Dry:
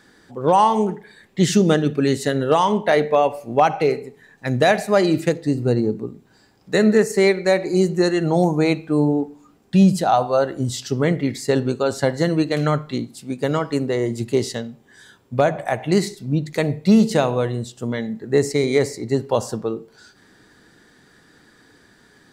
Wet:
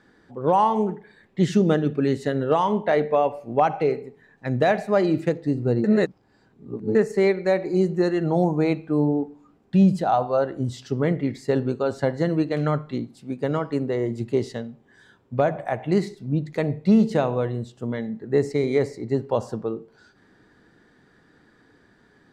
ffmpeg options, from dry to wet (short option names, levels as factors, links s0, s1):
-filter_complex "[0:a]asplit=3[s0][s1][s2];[s0]atrim=end=5.842[s3];[s1]atrim=start=5.838:end=6.952,asetpts=PTS-STARTPTS,areverse[s4];[s2]atrim=start=6.948[s5];[s3][s4]acrossfade=d=0.004:c1=hsin:c2=hsin[s6];[s6][s5]acrossfade=d=0.004:c1=hsin:c2=hsin,lowpass=f=1700:p=1,volume=0.708"